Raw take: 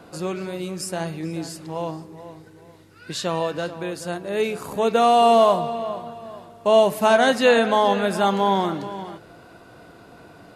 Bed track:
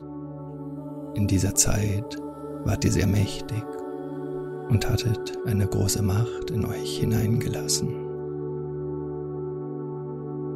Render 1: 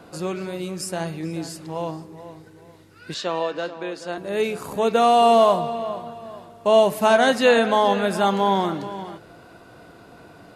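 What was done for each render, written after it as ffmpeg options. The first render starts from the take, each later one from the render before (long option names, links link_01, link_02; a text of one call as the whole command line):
ffmpeg -i in.wav -filter_complex "[0:a]asettb=1/sr,asplit=3[link_01][link_02][link_03];[link_01]atrim=end=3.144[link_04];[link_02]atrim=start=3.14:end=4.18,asetpts=PTS-STARTPTS,afade=type=in:duration=0.004:curve=qsin,afade=type=out:start_time=1.036:duration=0.004:curve=qsin,acrossover=split=220 6600:gain=0.112 1 0.112[link_05][link_06][link_07];[link_05][link_06][link_07]amix=inputs=3:normalize=0[link_08];[link_03]atrim=start=4.176[link_09];[link_04][link_08]acrossfade=duration=0.004:curve1=hsin:curve2=qsin[link_10];[link_10][link_09]acrossfade=duration=0.004:curve1=qsin:curve2=hsin" out.wav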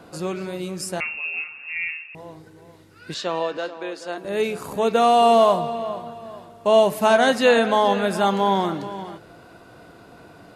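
ffmpeg -i in.wav -filter_complex "[0:a]asettb=1/sr,asplit=3[link_01][link_02][link_03];[link_01]atrim=end=1.004[link_04];[link_02]atrim=start=1:end=2.15,asetpts=PTS-STARTPTS,afade=type=in:duration=0.004:curve=qsin,afade=type=out:start_time=1.146:duration=0.004:curve=qsin,lowpass=frequency=2500:width_type=q:width=0.5098,lowpass=frequency=2500:width_type=q:width=0.6013,lowpass=frequency=2500:width_type=q:width=0.9,lowpass=frequency=2500:width_type=q:width=2.563,afreqshift=-2900[link_05];[link_03]atrim=start=2.146[link_06];[link_04][link_05]acrossfade=duration=0.004:curve1=hsin:curve2=qsin[link_07];[link_07][link_06]acrossfade=duration=0.004:curve1=qsin:curve2=hsin,asettb=1/sr,asplit=3[link_08][link_09][link_10];[link_08]atrim=end=3.574[link_11];[link_09]atrim=start=3.57:end=4.25,asetpts=PTS-STARTPTS,afade=type=in:duration=0.004:curve=qsin,afade=type=out:start_time=0.676:duration=0.004:curve=qsin,highpass=260[link_12];[link_10]atrim=start=4.246[link_13];[link_11][link_12]acrossfade=duration=0.004:curve1=hsin:curve2=qsin[link_14];[link_14][link_13]acrossfade=duration=0.004:curve1=qsin:curve2=hsin" out.wav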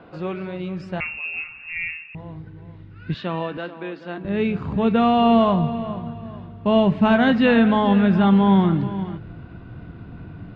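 ffmpeg -i in.wav -af "lowpass=frequency=3200:width=0.5412,lowpass=frequency=3200:width=1.3066,asubboost=boost=10.5:cutoff=170" out.wav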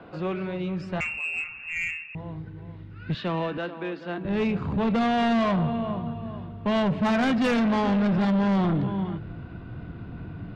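ffmpeg -i in.wav -filter_complex "[0:a]acrossover=split=240|600[link_01][link_02][link_03];[link_01]crystalizer=i=10:c=0[link_04];[link_04][link_02][link_03]amix=inputs=3:normalize=0,asoftclip=type=tanh:threshold=-20dB" out.wav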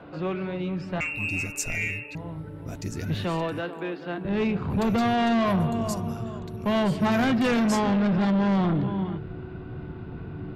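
ffmpeg -i in.wav -i bed.wav -filter_complex "[1:a]volume=-11.5dB[link_01];[0:a][link_01]amix=inputs=2:normalize=0" out.wav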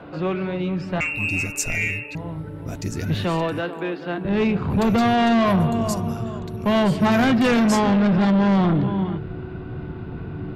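ffmpeg -i in.wav -af "volume=5dB" out.wav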